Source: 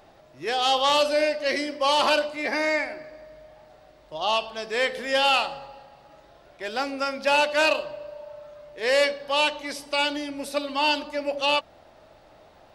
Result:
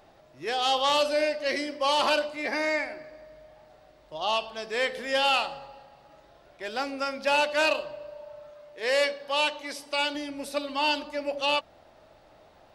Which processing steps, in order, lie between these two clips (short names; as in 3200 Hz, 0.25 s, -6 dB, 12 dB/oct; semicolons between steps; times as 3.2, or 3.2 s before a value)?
8.5–10.15 low shelf 150 Hz -10 dB; gain -3 dB